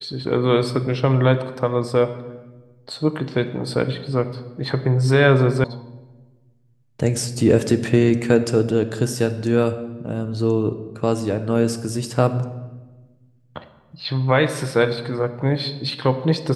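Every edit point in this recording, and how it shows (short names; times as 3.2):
5.64 sound cut off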